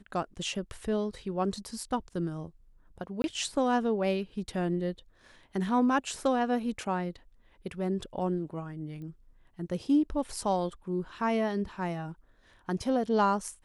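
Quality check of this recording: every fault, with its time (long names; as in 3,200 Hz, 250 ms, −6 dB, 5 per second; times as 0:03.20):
0:03.22–0:03.24: drop-out 21 ms
0:09.02: click −35 dBFS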